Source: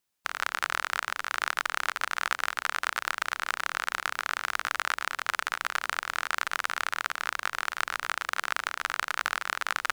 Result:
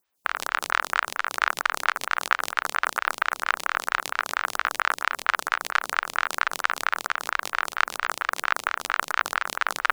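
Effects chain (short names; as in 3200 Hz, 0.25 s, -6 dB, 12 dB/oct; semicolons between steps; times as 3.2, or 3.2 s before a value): photocell phaser 4.4 Hz; gain +8 dB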